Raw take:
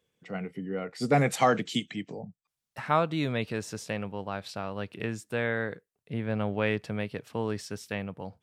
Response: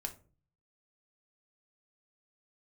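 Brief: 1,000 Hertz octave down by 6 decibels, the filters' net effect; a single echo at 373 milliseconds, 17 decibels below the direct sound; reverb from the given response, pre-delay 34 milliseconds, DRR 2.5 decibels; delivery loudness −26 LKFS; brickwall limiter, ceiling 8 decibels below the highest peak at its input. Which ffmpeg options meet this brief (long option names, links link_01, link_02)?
-filter_complex "[0:a]equalizer=frequency=1000:width_type=o:gain=-9,alimiter=limit=-22.5dB:level=0:latency=1,aecho=1:1:373:0.141,asplit=2[link_01][link_02];[1:a]atrim=start_sample=2205,adelay=34[link_03];[link_02][link_03]afir=irnorm=-1:irlink=0,volume=-1.5dB[link_04];[link_01][link_04]amix=inputs=2:normalize=0,volume=7.5dB"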